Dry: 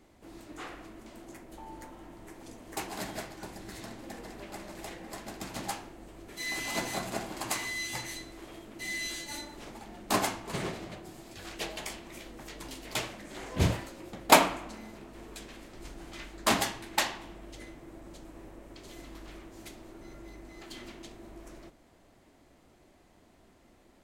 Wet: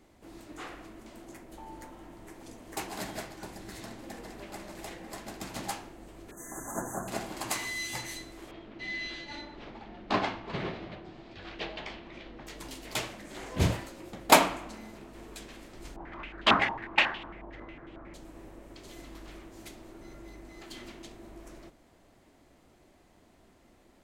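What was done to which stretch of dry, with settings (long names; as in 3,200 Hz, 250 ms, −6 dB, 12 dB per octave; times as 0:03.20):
0:06.31–0:07.08: Chebyshev band-stop filter 1,700–6,400 Hz, order 5
0:08.51–0:12.47: low-pass filter 4,100 Hz 24 dB per octave
0:15.96–0:18.14: low-pass on a step sequencer 11 Hz 920–3,100 Hz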